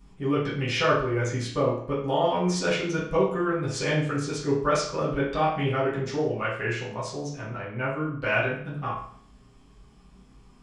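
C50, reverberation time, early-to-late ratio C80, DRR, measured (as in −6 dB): 3.5 dB, 0.55 s, 7.5 dB, −10.0 dB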